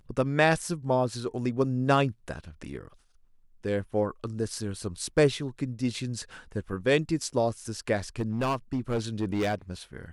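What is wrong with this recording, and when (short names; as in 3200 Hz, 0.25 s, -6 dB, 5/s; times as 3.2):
8.19–9.55 clipped -23.5 dBFS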